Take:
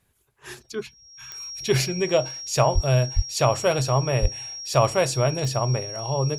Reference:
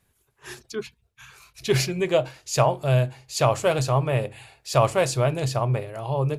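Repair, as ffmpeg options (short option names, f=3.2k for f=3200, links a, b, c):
-filter_complex "[0:a]adeclick=t=4,bandreject=f=5.6k:w=30,asplit=3[a][b][c];[a]afade=t=out:st=2.74:d=0.02[d];[b]highpass=f=140:w=0.5412,highpass=f=140:w=1.3066,afade=t=in:st=2.74:d=0.02,afade=t=out:st=2.86:d=0.02[e];[c]afade=t=in:st=2.86:d=0.02[f];[d][e][f]amix=inputs=3:normalize=0,asplit=3[g][h][i];[g]afade=t=out:st=3.15:d=0.02[j];[h]highpass=f=140:w=0.5412,highpass=f=140:w=1.3066,afade=t=in:st=3.15:d=0.02,afade=t=out:st=3.27:d=0.02[k];[i]afade=t=in:st=3.27:d=0.02[l];[j][k][l]amix=inputs=3:normalize=0,asplit=3[m][n][o];[m]afade=t=out:st=4.21:d=0.02[p];[n]highpass=f=140:w=0.5412,highpass=f=140:w=1.3066,afade=t=in:st=4.21:d=0.02,afade=t=out:st=4.33:d=0.02[q];[o]afade=t=in:st=4.33:d=0.02[r];[p][q][r]amix=inputs=3:normalize=0"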